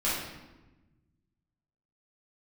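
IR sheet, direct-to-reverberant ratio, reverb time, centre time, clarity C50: -9.5 dB, 1.1 s, 70 ms, 0.0 dB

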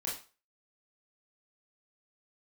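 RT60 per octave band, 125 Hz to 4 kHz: 0.30 s, 0.30 s, 0.35 s, 0.35 s, 0.35 s, 0.30 s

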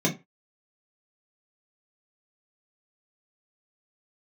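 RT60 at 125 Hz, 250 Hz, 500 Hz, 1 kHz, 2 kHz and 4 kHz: 0.25 s, 0.25 s, 0.25 s, 0.25 s, 0.25 s, 0.20 s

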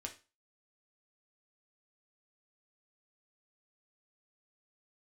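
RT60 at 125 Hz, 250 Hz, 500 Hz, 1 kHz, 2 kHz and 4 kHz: 0.30 s, 0.30 s, 0.30 s, 0.30 s, 0.30 s, 0.30 s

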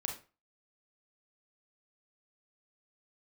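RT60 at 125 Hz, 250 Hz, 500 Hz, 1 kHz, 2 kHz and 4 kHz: 0.35 s, 0.30 s, 0.35 s, 0.35 s, 0.30 s, 0.25 s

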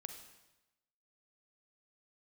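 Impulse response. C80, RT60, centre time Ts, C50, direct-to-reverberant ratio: 9.0 dB, 1.0 s, 23 ms, 7.0 dB, 5.5 dB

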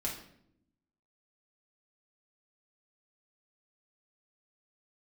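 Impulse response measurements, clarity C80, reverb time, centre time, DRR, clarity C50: 10.0 dB, no single decay rate, 29 ms, -4.0 dB, 6.0 dB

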